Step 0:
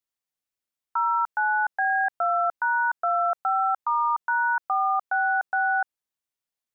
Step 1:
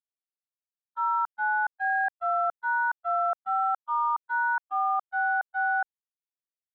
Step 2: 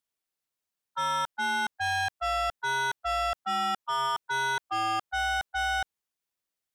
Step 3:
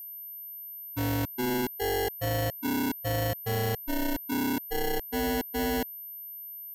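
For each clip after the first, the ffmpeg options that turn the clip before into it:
ffmpeg -i in.wav -af "agate=range=-50dB:threshold=-22dB:ratio=16:detection=peak,volume=2dB" out.wav
ffmpeg -i in.wav -af "asoftclip=type=tanh:threshold=-34.5dB,volume=8dB" out.wav
ffmpeg -i in.wav -af "acrusher=samples=36:mix=1:aa=0.000001,aeval=exprs='val(0)+0.0112*sin(2*PI*13000*n/s)':channel_layout=same" out.wav

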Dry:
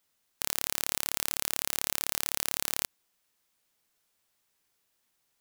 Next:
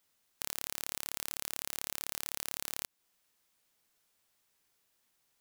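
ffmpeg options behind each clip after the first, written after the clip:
ffmpeg -i in.wav -af "acompressor=threshold=-36dB:ratio=2" out.wav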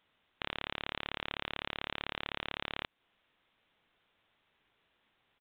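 ffmpeg -i in.wav -af "aresample=8000,aresample=44100,volume=7dB" out.wav

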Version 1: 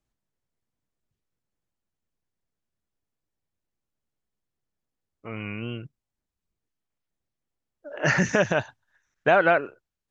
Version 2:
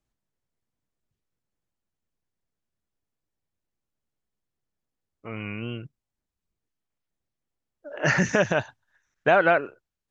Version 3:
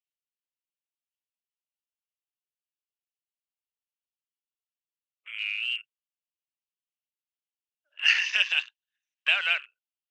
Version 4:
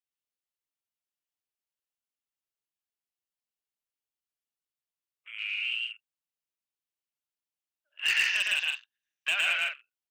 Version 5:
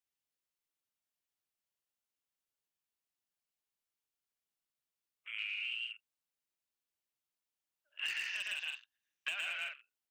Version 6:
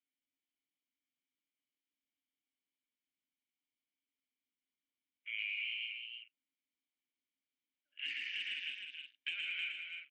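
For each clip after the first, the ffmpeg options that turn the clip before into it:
ffmpeg -i in.wav -af anull out.wav
ffmpeg -i in.wav -af "highpass=frequency=2800:width_type=q:width=5.6,afwtdn=0.0112" out.wav
ffmpeg -i in.wav -af "asoftclip=type=hard:threshold=-16.5dB,aecho=1:1:110.8|154.5:0.891|0.501,volume=-4dB" out.wav
ffmpeg -i in.wav -af "acompressor=threshold=-36dB:ratio=10" out.wav
ffmpeg -i in.wav -filter_complex "[0:a]asplit=3[link_01][link_02][link_03];[link_01]bandpass=frequency=270:width_type=q:width=8,volume=0dB[link_04];[link_02]bandpass=frequency=2290:width_type=q:width=8,volume=-6dB[link_05];[link_03]bandpass=frequency=3010:width_type=q:width=8,volume=-9dB[link_06];[link_04][link_05][link_06]amix=inputs=3:normalize=0,aecho=1:1:311:0.531,volume=10.5dB" out.wav

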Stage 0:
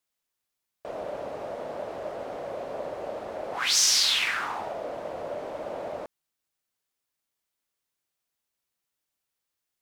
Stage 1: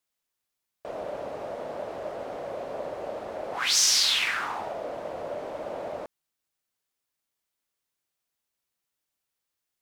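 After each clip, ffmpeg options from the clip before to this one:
ffmpeg -i in.wav -af anull out.wav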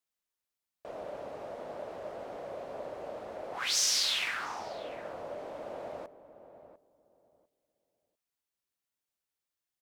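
ffmpeg -i in.wav -filter_complex "[0:a]asplit=2[link_01][link_02];[link_02]adelay=698,lowpass=frequency=860:poles=1,volume=-11dB,asplit=2[link_03][link_04];[link_04]adelay=698,lowpass=frequency=860:poles=1,volume=0.23,asplit=2[link_05][link_06];[link_06]adelay=698,lowpass=frequency=860:poles=1,volume=0.23[link_07];[link_01][link_03][link_05][link_07]amix=inputs=4:normalize=0,volume=-6.5dB" out.wav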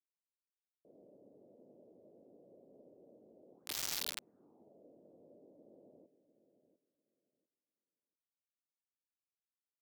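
ffmpeg -i in.wav -filter_complex "[0:a]highpass=250,lowpass=6200,acrossover=split=360[link_01][link_02];[link_02]acrusher=bits=3:mix=0:aa=0.000001[link_03];[link_01][link_03]amix=inputs=2:normalize=0,volume=-6dB" out.wav

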